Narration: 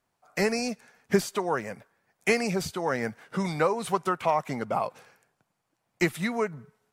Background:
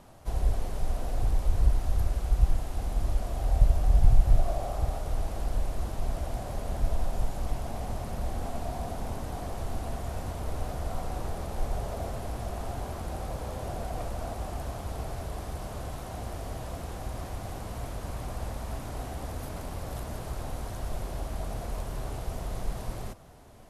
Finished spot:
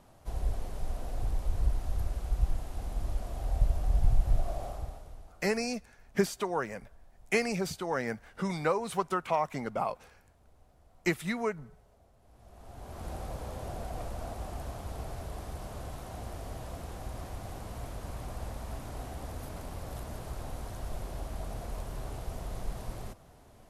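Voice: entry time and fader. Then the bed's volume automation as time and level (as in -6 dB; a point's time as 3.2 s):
5.05 s, -4.0 dB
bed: 4.67 s -5.5 dB
5.58 s -29 dB
12.17 s -29 dB
13.06 s -4 dB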